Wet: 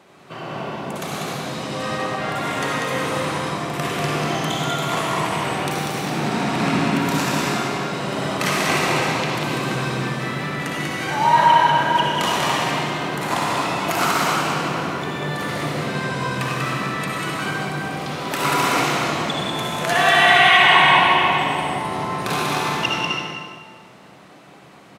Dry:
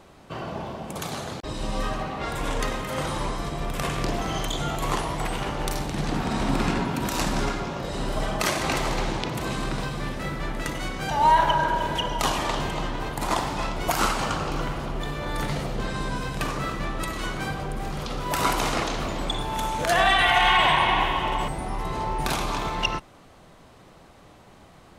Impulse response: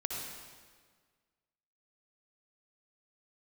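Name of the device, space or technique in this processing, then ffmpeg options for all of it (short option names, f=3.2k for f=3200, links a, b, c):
stadium PA: -filter_complex "[0:a]highpass=f=120:w=0.5412,highpass=f=120:w=1.3066,equalizer=f=2.1k:t=o:w=1.3:g=4.5,aecho=1:1:192.4|259.5:0.631|0.316[a];[1:a]atrim=start_sample=2205[b];[a][b]afir=irnorm=-1:irlink=0"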